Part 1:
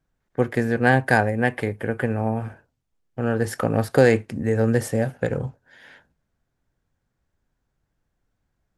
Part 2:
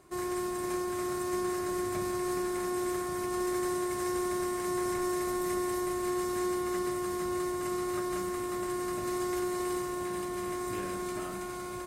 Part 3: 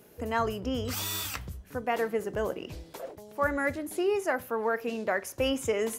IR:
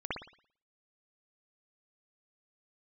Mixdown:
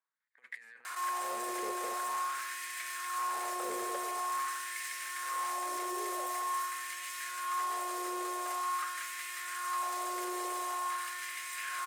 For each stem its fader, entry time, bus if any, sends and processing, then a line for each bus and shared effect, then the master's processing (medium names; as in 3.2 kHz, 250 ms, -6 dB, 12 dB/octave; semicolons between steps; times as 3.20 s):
-18.0 dB, 0.00 s, no send, rippled EQ curve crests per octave 0.99, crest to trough 6 dB; compressor with a negative ratio -23 dBFS, ratio -0.5
+2.0 dB, 0.85 s, send -15 dB, Bessel high-pass 710 Hz, order 2; level flattener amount 70%
-16.0 dB, 1.90 s, no send, tilt shelf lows +7.5 dB; peak limiter -24.5 dBFS, peak gain reduction 11.5 dB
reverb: on, pre-delay 56 ms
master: saturation -34 dBFS, distortion -11 dB; LFO high-pass sine 0.46 Hz 480–2000 Hz